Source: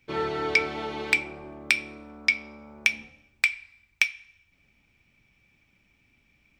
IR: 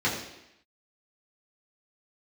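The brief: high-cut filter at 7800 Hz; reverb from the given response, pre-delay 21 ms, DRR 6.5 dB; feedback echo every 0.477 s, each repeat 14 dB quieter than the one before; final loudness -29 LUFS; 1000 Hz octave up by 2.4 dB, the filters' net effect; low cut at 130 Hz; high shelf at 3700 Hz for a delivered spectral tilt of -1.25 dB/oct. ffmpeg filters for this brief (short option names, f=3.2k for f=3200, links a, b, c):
-filter_complex "[0:a]highpass=130,lowpass=7.8k,equalizer=f=1k:t=o:g=4,highshelf=f=3.7k:g=-7,aecho=1:1:477|954:0.2|0.0399,asplit=2[a][b];[1:a]atrim=start_sample=2205,adelay=21[c];[b][c]afir=irnorm=-1:irlink=0,volume=-19dB[d];[a][d]amix=inputs=2:normalize=0,volume=-1.5dB"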